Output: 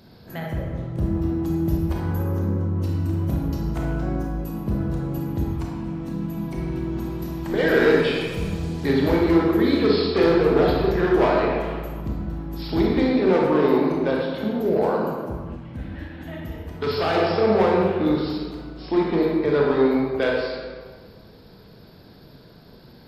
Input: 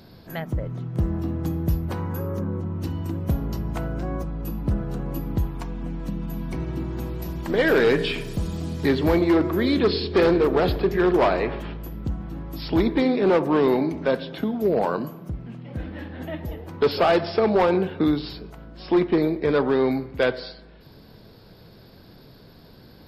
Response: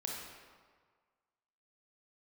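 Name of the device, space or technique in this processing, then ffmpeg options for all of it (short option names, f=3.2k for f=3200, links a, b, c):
stairwell: -filter_complex "[1:a]atrim=start_sample=2205[a];[0:a][a]afir=irnorm=-1:irlink=0,asettb=1/sr,asplit=3[b][c][d];[b]atrim=end=15.564[e];[c]atrim=start=15.56:end=17.16,asetpts=PTS-STARTPTS,afade=t=in:d=0.004:c=qsin,afade=t=out:st=1.596:d=0.004:c=qsin,equalizer=f=490:t=o:w=1.5:g=-6[f];[d]atrim=start=17.156[g];[e][f]acrossfade=d=0.004:c1=hsin:c2=qsin[h];[h][g]acrossfade=d=0.004:c1=qsin:c2=hsin"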